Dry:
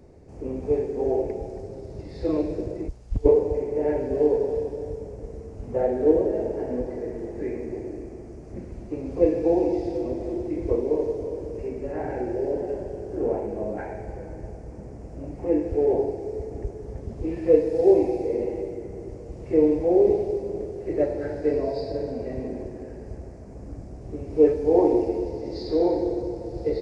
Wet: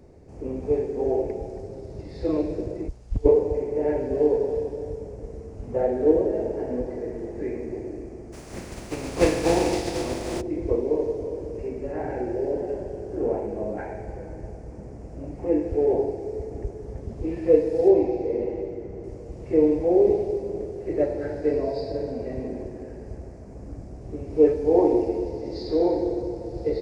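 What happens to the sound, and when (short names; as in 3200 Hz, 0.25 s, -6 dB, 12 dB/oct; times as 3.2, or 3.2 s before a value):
8.32–10.4 spectral contrast lowered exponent 0.54
17.88–19.04 air absorption 100 m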